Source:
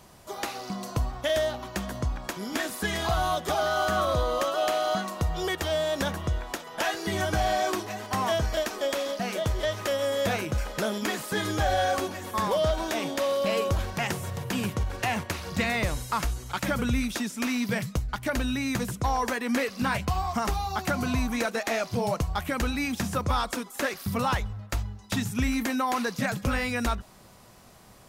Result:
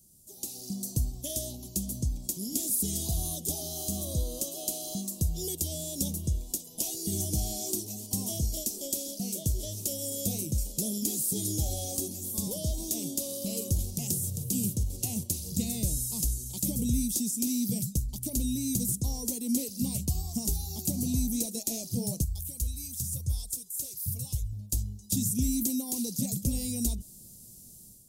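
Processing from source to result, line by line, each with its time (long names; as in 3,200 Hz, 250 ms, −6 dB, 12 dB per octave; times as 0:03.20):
0:22.24–0:24.53: drawn EQ curve 130 Hz 0 dB, 220 Hz −21 dB, 370 Hz −14 dB, 11,000 Hz −3 dB
whole clip: Chebyshev band-stop filter 230–8,800 Hz, order 2; tilt shelving filter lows −6.5 dB, about 1,100 Hz; automatic gain control gain up to 10 dB; level −4 dB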